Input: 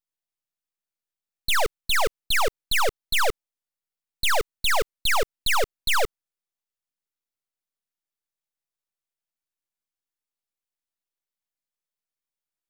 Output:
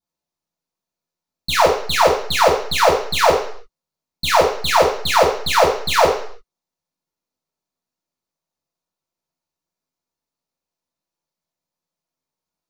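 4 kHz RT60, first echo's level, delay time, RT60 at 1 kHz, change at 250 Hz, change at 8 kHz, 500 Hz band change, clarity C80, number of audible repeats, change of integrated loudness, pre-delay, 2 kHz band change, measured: 0.60 s, no echo, no echo, 0.55 s, +13.5 dB, +4.0 dB, +13.0 dB, 9.0 dB, no echo, +8.0 dB, 3 ms, +3.5 dB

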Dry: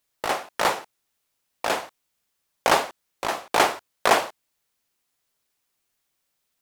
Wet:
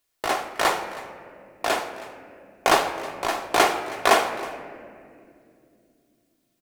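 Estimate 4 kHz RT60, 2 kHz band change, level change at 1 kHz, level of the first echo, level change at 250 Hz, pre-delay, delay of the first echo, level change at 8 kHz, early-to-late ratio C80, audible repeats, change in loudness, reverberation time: 1.2 s, +1.5 dB, +1.5 dB, -18.5 dB, +3.0 dB, 3 ms, 319 ms, +1.0 dB, 10.0 dB, 1, +0.5 dB, 2.4 s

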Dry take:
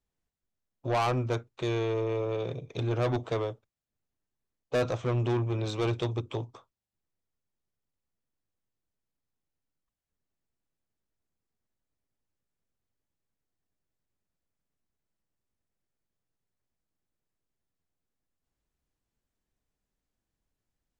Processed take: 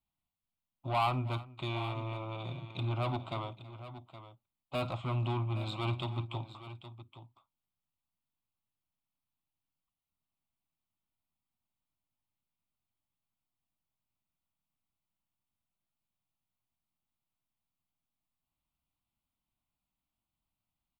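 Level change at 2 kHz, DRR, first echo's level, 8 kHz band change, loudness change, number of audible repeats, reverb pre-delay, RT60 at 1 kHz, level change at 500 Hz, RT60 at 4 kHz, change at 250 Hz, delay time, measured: -4.0 dB, no reverb, -19.0 dB, under -10 dB, -5.5 dB, 3, no reverb, no reverb, -11.0 dB, no reverb, -7.0 dB, 52 ms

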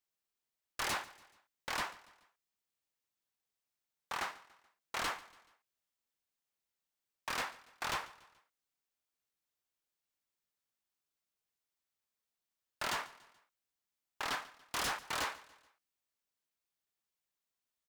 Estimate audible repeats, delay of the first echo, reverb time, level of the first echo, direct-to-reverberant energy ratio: 3, 143 ms, no reverb, -20.0 dB, no reverb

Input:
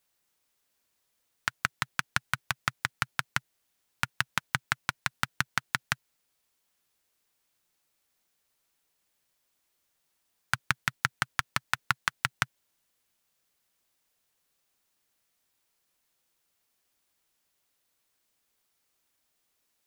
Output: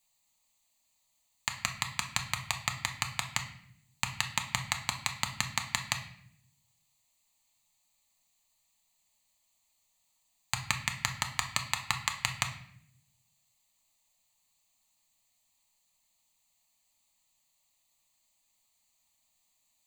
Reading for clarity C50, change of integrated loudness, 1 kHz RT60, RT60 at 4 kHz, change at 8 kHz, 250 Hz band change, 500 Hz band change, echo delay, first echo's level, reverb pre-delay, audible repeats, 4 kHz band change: 10.0 dB, -1.0 dB, 0.60 s, 0.55 s, +5.5 dB, -2.0 dB, -1.0 dB, no echo, no echo, 3 ms, no echo, +2.0 dB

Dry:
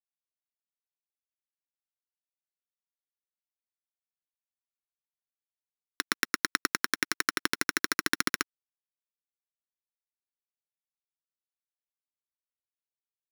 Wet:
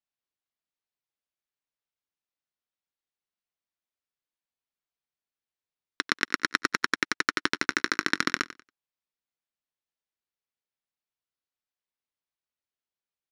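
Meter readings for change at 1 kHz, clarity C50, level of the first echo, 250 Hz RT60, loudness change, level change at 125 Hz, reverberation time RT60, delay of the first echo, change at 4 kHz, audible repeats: +3.0 dB, no reverb, -15.0 dB, no reverb, +2.0 dB, +3.0 dB, no reverb, 93 ms, +1.0 dB, 2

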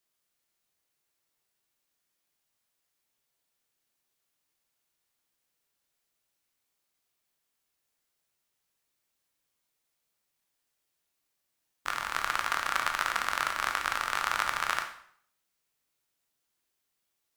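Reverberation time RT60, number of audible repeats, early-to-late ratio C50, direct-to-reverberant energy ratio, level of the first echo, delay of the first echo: 0.60 s, no echo, 8.0 dB, 4.0 dB, no echo, no echo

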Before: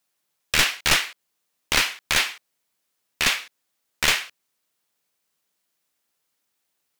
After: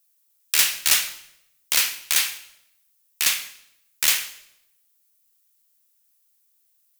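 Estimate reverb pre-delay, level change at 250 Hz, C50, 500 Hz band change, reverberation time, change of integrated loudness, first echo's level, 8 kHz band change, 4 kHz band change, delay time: 25 ms, -13.0 dB, 13.0 dB, -10.5 dB, 0.80 s, +1.0 dB, no echo, +5.5 dB, -0.5 dB, no echo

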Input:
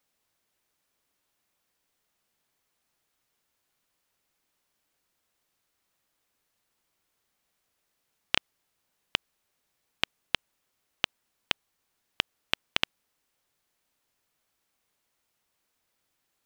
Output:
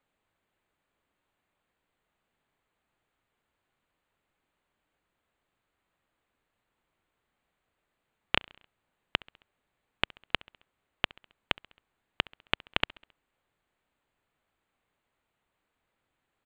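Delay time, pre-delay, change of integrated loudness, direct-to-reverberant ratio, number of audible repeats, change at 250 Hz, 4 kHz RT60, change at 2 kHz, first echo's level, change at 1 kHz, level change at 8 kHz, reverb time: 67 ms, no reverb, -1.5 dB, no reverb, 3, +3.0 dB, no reverb, 0.0 dB, -24.0 dB, +2.0 dB, under -10 dB, no reverb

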